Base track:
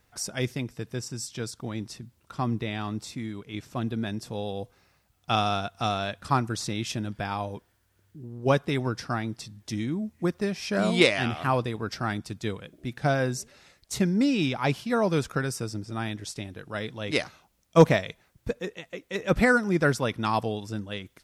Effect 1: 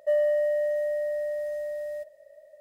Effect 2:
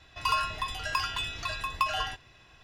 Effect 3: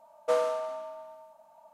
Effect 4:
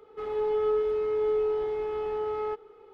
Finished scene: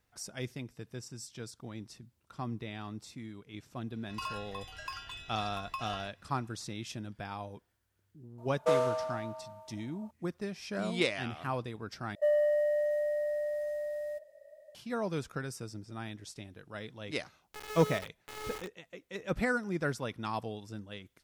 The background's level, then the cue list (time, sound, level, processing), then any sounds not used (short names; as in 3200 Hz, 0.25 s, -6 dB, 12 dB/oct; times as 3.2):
base track -10 dB
3.93 add 2 -12 dB
8.38 add 3 -1 dB
12.15 replace with 1 -3.5 dB
17.16 add 4 -17 dB + bit-crush 4-bit